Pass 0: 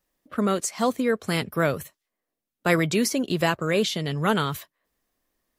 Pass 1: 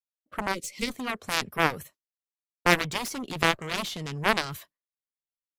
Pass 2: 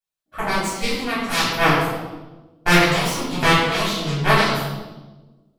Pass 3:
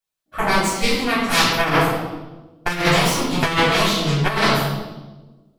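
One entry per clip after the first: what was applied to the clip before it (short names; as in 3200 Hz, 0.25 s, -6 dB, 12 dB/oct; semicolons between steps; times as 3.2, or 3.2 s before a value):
expander -44 dBFS; added harmonics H 2 -15 dB, 3 -16 dB, 7 -17 dB, 8 -31 dB, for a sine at -5 dBFS; spectral gain 0.54–0.9, 590–1900 Hz -20 dB; gain +2 dB
reverb RT60 1.2 s, pre-delay 3 ms, DRR -10.5 dB; gain -4.5 dB
negative-ratio compressor -18 dBFS, ratio -0.5; gain +2.5 dB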